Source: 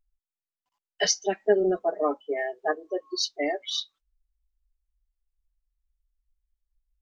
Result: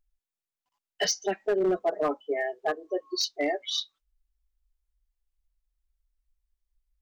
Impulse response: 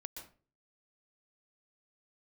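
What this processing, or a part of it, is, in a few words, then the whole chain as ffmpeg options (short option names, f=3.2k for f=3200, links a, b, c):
limiter into clipper: -af "alimiter=limit=-15dB:level=0:latency=1:release=129,asoftclip=type=hard:threshold=-19.5dB"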